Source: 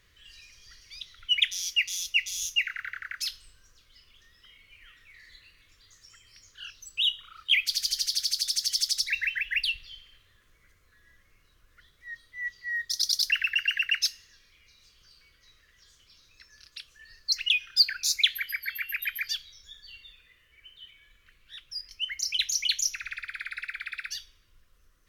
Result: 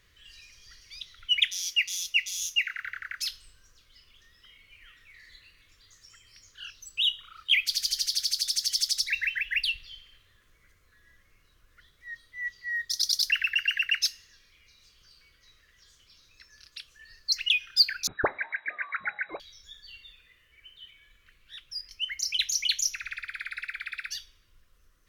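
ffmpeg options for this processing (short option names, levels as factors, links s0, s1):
-filter_complex "[0:a]asettb=1/sr,asplit=3[s0][s1][s2];[s0]atrim=end=1.474[s3];[s1]atrim=start=1.47:end=2.85,asetpts=PTS-STARTPTS,afade=t=in:d=0.004:c=qsin,afade=t=out:st=1.376:d=0.004:c=qsin,lowshelf=f=150:g=-8[s4];[s2]atrim=start=2.846[s5];[s3][s4]acrossfade=d=0.004:c1=hsin:c2=qsin[s6];[s6][s5]acrossfade=d=0.004:c1=qsin:c2=hsin,asettb=1/sr,asplit=3[s7][s8][s9];[s7]atrim=end=18.074[s10];[s8]atrim=start=18.07:end=19.4,asetpts=PTS-STARTPTS,afade=t=in:d=0.004:c=qsin,afade=t=out:st=1.326:d=0.004:c=qsin,lowpass=f=3300:t=q:w=0.5098,lowpass=f=3300:t=q:w=0.6013,lowpass=f=3300:t=q:w=0.9,lowpass=f=3300:t=q:w=2.563,afreqshift=-3900[s11];[s9]atrim=start=19.396[s12];[s10][s11]acrossfade=d=0.004:c1=hsin:c2=qsin[s13];[s13][s12]acrossfade=d=0.004:c1=qsin:c2=hsin"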